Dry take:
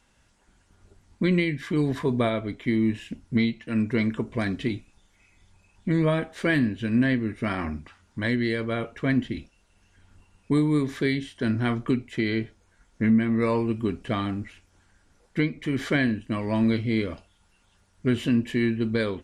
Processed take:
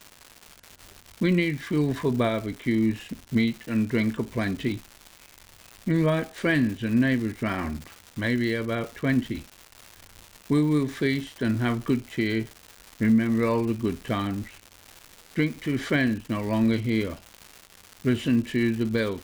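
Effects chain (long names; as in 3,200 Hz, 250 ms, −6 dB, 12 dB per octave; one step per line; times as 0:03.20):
surface crackle 320 per second −33 dBFS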